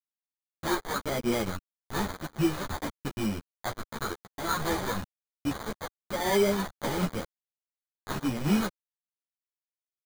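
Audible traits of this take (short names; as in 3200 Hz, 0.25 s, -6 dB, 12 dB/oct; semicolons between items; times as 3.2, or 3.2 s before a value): a quantiser's noise floor 6-bit, dither none; phasing stages 2, 0.99 Hz, lowest notch 200–1500 Hz; aliases and images of a low sample rate 2700 Hz, jitter 0%; a shimmering, thickened sound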